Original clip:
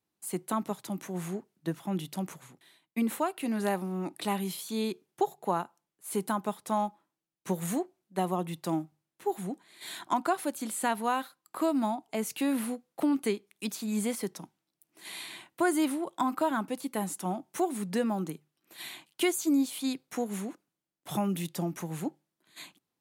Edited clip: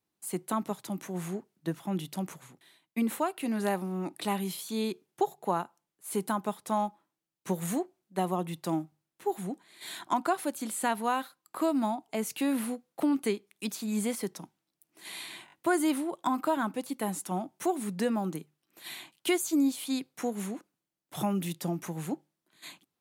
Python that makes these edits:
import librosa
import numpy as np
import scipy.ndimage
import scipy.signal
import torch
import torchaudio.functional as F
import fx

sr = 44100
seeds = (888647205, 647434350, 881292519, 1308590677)

y = fx.edit(x, sr, fx.stutter(start_s=15.46, slice_s=0.02, count=4), tone=tone)